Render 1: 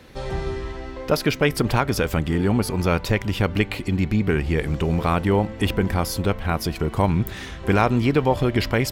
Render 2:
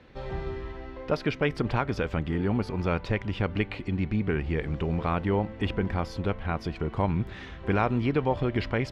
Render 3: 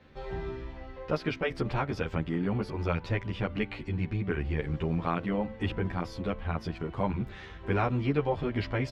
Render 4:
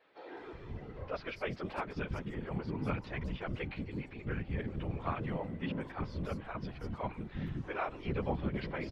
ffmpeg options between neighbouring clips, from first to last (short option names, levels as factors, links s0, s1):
-af "lowpass=3300,volume=0.473"
-filter_complex "[0:a]asplit=2[s0][s1];[s1]adelay=11.2,afreqshift=1.1[s2];[s0][s2]amix=inputs=2:normalize=1"
-filter_complex "[0:a]acrossover=split=340|5400[s0][s1][s2];[s2]adelay=200[s3];[s0]adelay=370[s4];[s4][s1][s3]amix=inputs=3:normalize=0,afftfilt=real='hypot(re,im)*cos(2*PI*random(0))':imag='hypot(re,im)*sin(2*PI*random(1))':win_size=512:overlap=0.75"